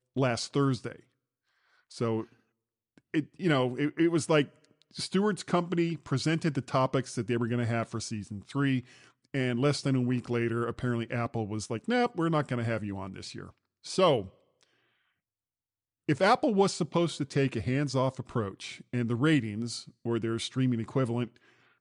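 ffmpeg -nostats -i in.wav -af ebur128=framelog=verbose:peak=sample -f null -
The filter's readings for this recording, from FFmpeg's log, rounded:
Integrated loudness:
  I:         -29.9 LUFS
  Threshold: -40.5 LUFS
Loudness range:
  LRA:         4.3 LU
  Threshold: -50.7 LUFS
  LRA low:   -33.3 LUFS
  LRA high:  -29.0 LUFS
Sample peak:
  Peak:      -11.9 dBFS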